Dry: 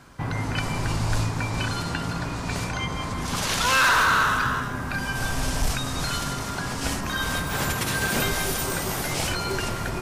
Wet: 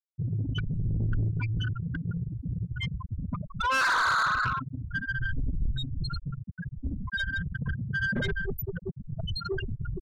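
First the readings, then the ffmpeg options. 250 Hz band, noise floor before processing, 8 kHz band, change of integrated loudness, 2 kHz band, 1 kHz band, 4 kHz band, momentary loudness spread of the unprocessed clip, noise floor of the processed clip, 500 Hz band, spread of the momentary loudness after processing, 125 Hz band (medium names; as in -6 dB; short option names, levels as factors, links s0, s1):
-5.5 dB, -31 dBFS, -19.5 dB, -5.5 dB, -5.0 dB, -6.5 dB, -10.0 dB, 10 LU, -49 dBFS, -8.5 dB, 12 LU, -1.5 dB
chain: -af "afftfilt=real='re*gte(hypot(re,im),0.224)':imag='im*gte(hypot(re,im),0.224)':win_size=1024:overlap=0.75,asoftclip=type=tanh:threshold=0.0562,volume=1.33"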